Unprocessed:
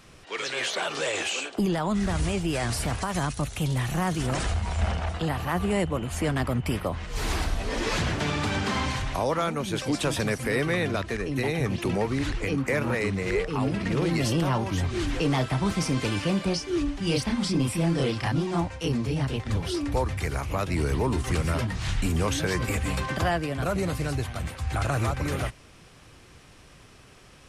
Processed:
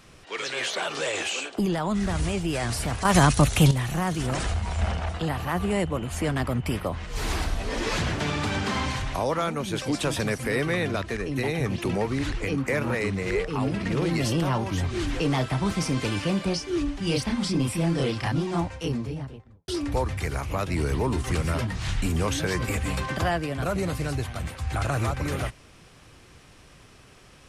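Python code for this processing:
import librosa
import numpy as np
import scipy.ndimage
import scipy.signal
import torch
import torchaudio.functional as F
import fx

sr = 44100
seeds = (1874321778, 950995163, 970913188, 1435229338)

y = fx.studio_fade_out(x, sr, start_s=18.66, length_s=1.02)
y = fx.edit(y, sr, fx.clip_gain(start_s=3.05, length_s=0.66, db=10.0), tone=tone)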